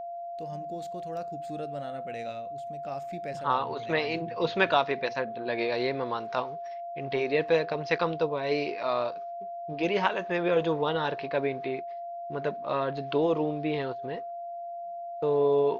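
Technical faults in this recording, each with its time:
whistle 690 Hz −35 dBFS

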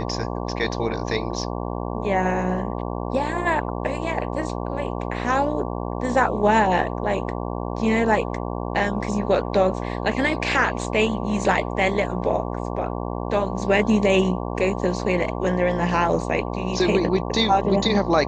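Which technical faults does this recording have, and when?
mains buzz 60 Hz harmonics 19 −28 dBFS

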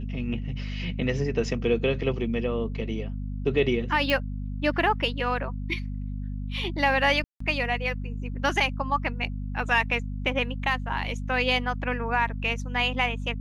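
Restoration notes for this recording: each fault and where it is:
mains hum 50 Hz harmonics 5 −32 dBFS
0:04.10: click −13 dBFS
0:07.24–0:07.40: drop-out 164 ms

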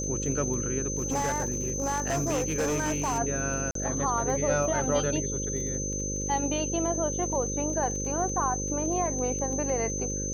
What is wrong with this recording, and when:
mains buzz 50 Hz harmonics 11 −34 dBFS
surface crackle 20 per second −35 dBFS
whistle 6,200 Hz −32 dBFS
0:00.98–0:03.19: clipping −23.5 dBFS
0:03.71–0:03.75: drop-out 43 ms

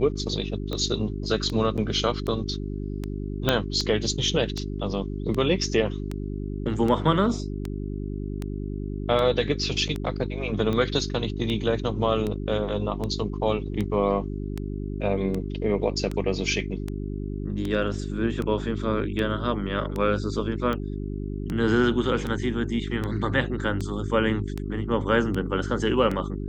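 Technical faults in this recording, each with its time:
mains hum 50 Hz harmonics 8 −31 dBFS
scratch tick 78 rpm −17 dBFS
0:01.77–0:01.78: drop-out 7.5 ms
0:03.49: click −6 dBFS

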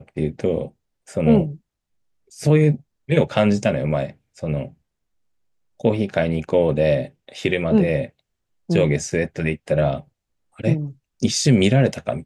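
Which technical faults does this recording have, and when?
0:09.10: drop-out 2.4 ms

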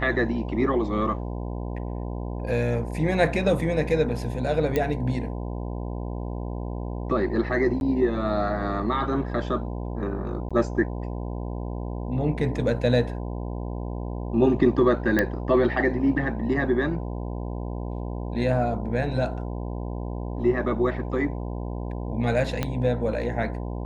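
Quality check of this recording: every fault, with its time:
mains buzz 60 Hz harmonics 17 −31 dBFS
0:04.76: click −11 dBFS
0:07.80–0:07.81: drop-out 11 ms
0:10.49–0:10.51: drop-out 16 ms
0:15.19: click −9 dBFS
0:22.63: click −11 dBFS

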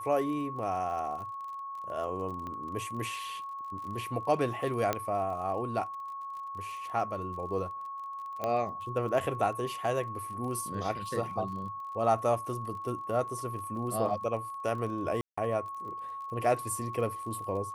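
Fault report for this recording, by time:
surface crackle 32 per second −41 dBFS
whistle 1,100 Hz −37 dBFS
0:02.47: click −28 dBFS
0:04.93: click −14 dBFS
0:08.44: click −19 dBFS
0:15.21–0:15.38: drop-out 165 ms

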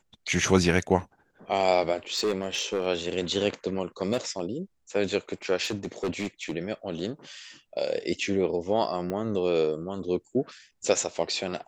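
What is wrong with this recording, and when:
0:02.13–0:02.87: clipping −21.5 dBFS
0:04.12–0:04.40: clipping −20 dBFS
0:05.63–0:06.52: clipping −24.5 dBFS
0:09.10: click −19 dBFS

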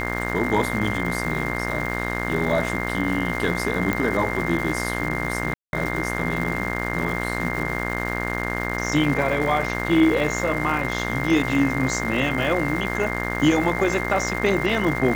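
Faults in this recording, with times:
mains buzz 60 Hz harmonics 37 −28 dBFS
surface crackle 540 per second −30 dBFS
whistle 2,100 Hz −30 dBFS
0:03.93: click −10 dBFS
0:05.54–0:05.73: drop-out 191 ms

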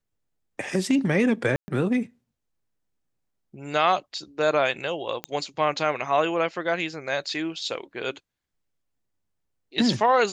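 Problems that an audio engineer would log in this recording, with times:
0:01.56–0:01.68: drop-out 120 ms
0:05.24: click −13 dBFS

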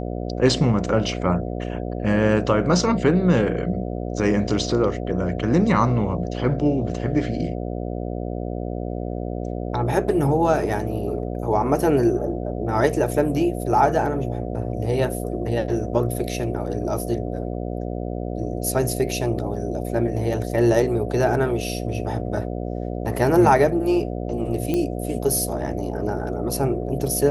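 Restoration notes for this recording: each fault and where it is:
mains buzz 60 Hz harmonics 12 −28 dBFS
0:24.74: click −11 dBFS

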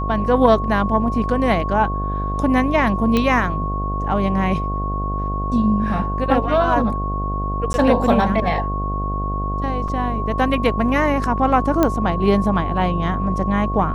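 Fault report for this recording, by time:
mains buzz 50 Hz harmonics 15 −24 dBFS
whistle 1,100 Hz −25 dBFS
0:03.17: click −6 dBFS
0:07.73–0:07.74: drop-out
0:09.88: drop-out 5 ms
0:11.83: click −4 dBFS

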